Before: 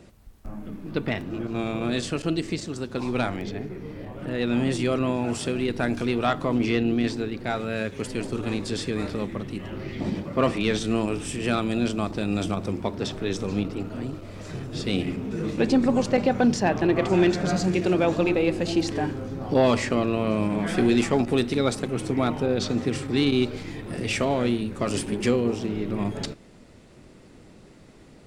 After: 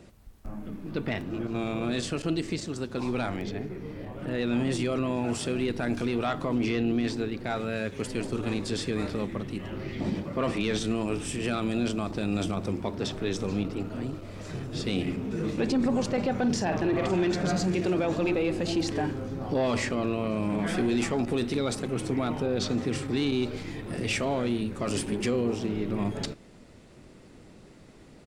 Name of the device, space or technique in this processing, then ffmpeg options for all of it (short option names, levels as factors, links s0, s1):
soft clipper into limiter: -filter_complex "[0:a]asplit=3[s0][s1][s2];[s0]afade=t=out:st=16.43:d=0.02[s3];[s1]asplit=2[s4][s5];[s5]adelay=49,volume=0.335[s6];[s4][s6]amix=inputs=2:normalize=0,afade=t=in:st=16.43:d=0.02,afade=t=out:st=17.17:d=0.02[s7];[s2]afade=t=in:st=17.17:d=0.02[s8];[s3][s7][s8]amix=inputs=3:normalize=0,asoftclip=type=tanh:threshold=0.299,alimiter=limit=0.133:level=0:latency=1:release=14,volume=0.841"